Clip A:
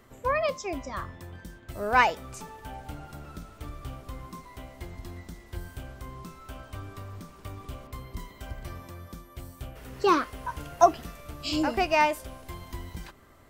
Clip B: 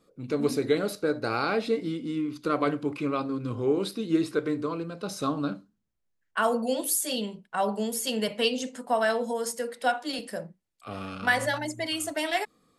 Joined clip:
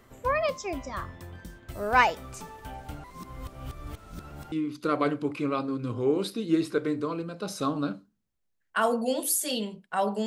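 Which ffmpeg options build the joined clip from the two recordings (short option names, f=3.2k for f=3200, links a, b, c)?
-filter_complex "[0:a]apad=whole_dur=10.26,atrim=end=10.26,asplit=2[a][b];[a]atrim=end=3.042[c];[b]atrim=start=3.038:end=4.522,asetpts=PTS-STARTPTS,areverse[d];[1:a]atrim=start=2.128:end=7.87[e];[c][d]acrossfade=d=0.004:c1=hsin:c2=hsin[f];[f][e]acrossfade=d=0.004:c1=hsin:c2=hsin"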